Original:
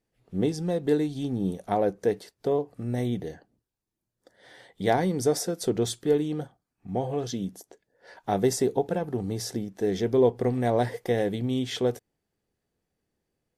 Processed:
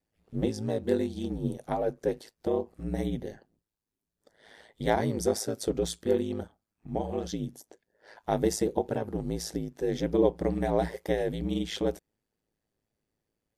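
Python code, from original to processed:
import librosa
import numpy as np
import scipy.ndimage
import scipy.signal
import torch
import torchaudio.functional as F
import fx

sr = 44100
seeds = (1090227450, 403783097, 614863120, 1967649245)

y = x * np.sin(2.0 * np.pi * 54.0 * np.arange(len(x)) / sr)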